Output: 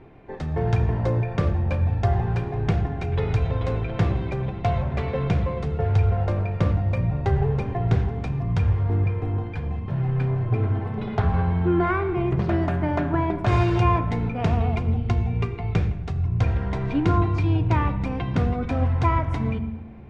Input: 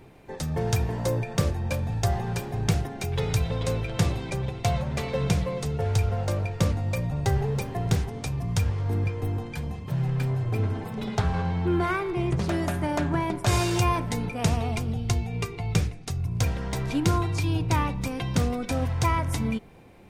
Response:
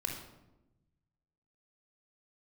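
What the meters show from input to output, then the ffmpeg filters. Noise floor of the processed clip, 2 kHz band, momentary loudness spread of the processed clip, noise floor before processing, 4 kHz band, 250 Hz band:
-32 dBFS, +0.5 dB, 6 LU, -39 dBFS, n/a, +3.0 dB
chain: -filter_complex "[0:a]lowpass=2.2k,asplit=2[a][b];[1:a]atrim=start_sample=2205,asetrate=30870,aresample=44100[c];[b][c]afir=irnorm=-1:irlink=0,volume=-10dB[d];[a][d]amix=inputs=2:normalize=0"

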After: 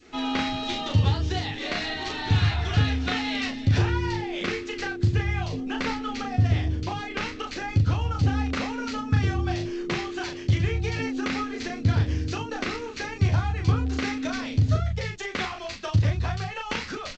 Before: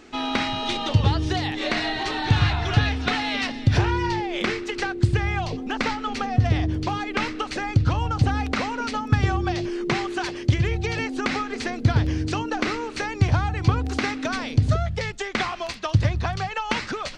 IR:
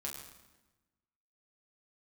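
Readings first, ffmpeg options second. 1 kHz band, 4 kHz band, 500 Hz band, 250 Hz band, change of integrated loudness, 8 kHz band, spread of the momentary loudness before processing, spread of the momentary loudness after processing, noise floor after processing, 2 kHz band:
-5.5 dB, -3.0 dB, -4.0 dB, -2.5 dB, -2.5 dB, -3.0 dB, 6 LU, 8 LU, -37 dBFS, -4.0 dB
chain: -filter_complex "[0:a]adynamicequalizer=threshold=0.01:dfrequency=920:dqfactor=0.95:tfrequency=920:tqfactor=0.95:attack=5:release=100:ratio=0.375:range=2:mode=cutabove:tftype=bell,asplit=2[a][b];[b]aecho=0:1:11|38:0.668|0.708[c];[a][c]amix=inputs=2:normalize=0,volume=-5.5dB" -ar 16000 -c:a g722

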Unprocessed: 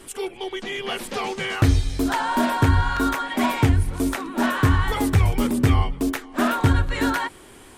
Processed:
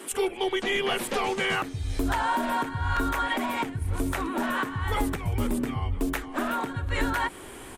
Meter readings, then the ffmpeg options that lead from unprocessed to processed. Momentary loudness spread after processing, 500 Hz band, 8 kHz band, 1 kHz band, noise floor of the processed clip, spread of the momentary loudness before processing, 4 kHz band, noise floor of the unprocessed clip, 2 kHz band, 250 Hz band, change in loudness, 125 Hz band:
4 LU, -2.0 dB, -3.5 dB, -3.5 dB, -42 dBFS, 9 LU, -2.5 dB, -46 dBFS, -3.0 dB, -7.5 dB, -6.0 dB, -11.0 dB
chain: -filter_complex "[0:a]equalizer=f=5k:t=o:w=0.95:g=-5,acompressor=threshold=-24dB:ratio=10,alimiter=limit=-20.5dB:level=0:latency=1:release=433,acrossover=split=180[a][b];[a]adelay=120[c];[c][b]amix=inputs=2:normalize=0,volume=4.5dB"

